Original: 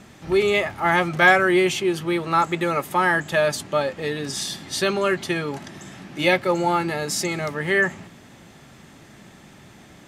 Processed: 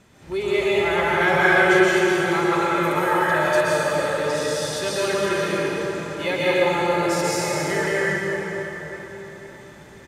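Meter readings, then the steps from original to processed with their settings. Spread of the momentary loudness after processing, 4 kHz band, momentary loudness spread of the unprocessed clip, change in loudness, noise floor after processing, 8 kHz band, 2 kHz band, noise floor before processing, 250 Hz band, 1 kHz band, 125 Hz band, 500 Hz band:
13 LU, 0.0 dB, 10 LU, +0.5 dB, -44 dBFS, +0.5 dB, +1.0 dB, -48 dBFS, +1.0 dB, +0.5 dB, 0.0 dB, +2.5 dB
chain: comb 2 ms, depth 31%; plate-style reverb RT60 4.6 s, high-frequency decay 0.65×, pre-delay 0.11 s, DRR -8.5 dB; gain -8 dB

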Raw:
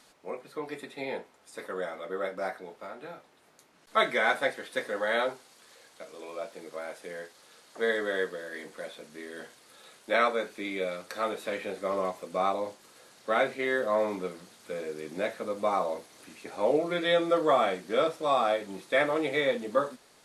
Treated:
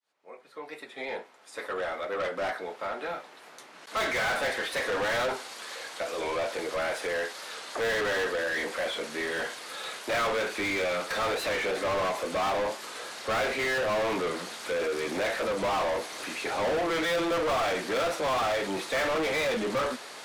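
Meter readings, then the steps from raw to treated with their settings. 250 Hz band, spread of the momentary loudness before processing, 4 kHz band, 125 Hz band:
+0.5 dB, 17 LU, +5.0 dB, +3.0 dB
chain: opening faded in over 5.78 s; overdrive pedal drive 35 dB, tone 3900 Hz, clips at -12 dBFS; record warp 45 rpm, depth 100 cents; gain -9 dB

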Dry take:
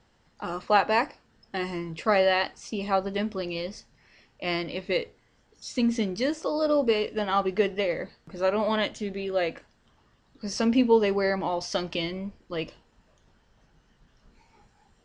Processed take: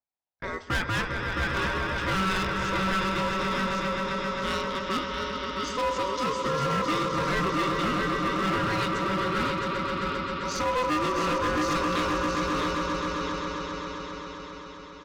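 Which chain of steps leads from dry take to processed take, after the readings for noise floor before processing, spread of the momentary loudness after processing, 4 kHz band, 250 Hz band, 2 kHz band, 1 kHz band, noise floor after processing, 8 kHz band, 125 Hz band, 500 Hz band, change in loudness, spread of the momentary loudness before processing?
-65 dBFS, 7 LU, +2.0 dB, -1.0 dB, +4.0 dB, +3.5 dB, -43 dBFS, +4.5 dB, +7.5 dB, -4.0 dB, -0.5 dB, 13 LU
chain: LPF 7300 Hz 24 dB/oct; spectral noise reduction 6 dB; gate -46 dBFS, range -29 dB; swelling echo 0.132 s, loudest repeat 5, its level -10 dB; ring modulator 760 Hz; echo 0.668 s -7 dB; hard clip -24.5 dBFS, distortion -9 dB; gain +2 dB

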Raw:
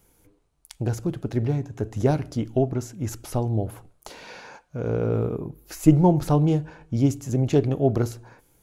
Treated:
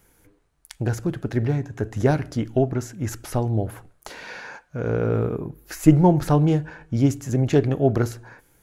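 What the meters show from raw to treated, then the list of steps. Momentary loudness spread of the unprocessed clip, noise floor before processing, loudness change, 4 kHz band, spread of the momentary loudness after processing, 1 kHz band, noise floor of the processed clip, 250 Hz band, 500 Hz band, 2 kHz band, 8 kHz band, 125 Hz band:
17 LU, -64 dBFS, +1.5 dB, +2.0 dB, 17 LU, +2.5 dB, -62 dBFS, +1.5 dB, +1.5 dB, +7.5 dB, +1.5 dB, +1.5 dB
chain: bell 1700 Hz +8 dB 0.69 oct; gain +1.5 dB

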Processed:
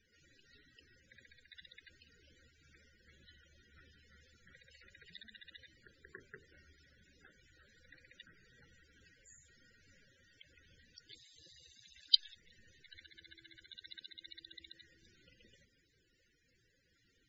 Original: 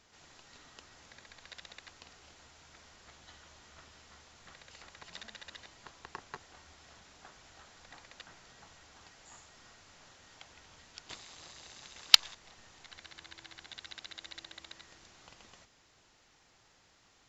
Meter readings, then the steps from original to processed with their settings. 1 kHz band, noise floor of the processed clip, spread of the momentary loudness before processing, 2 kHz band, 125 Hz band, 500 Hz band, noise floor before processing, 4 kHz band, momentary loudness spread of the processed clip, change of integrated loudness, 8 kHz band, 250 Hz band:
under -20 dB, -75 dBFS, 27 LU, -13.0 dB, -4.5 dB, -9.5 dB, -66 dBFS, -7.5 dB, 28 LU, -8.5 dB, -22.0 dB, -6.5 dB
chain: band shelf 900 Hz -13 dB 1.1 oct; notches 50/100/150/200/250/300/350/400/450 Hz; loudest bins only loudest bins 32; noise-modulated level, depth 55%

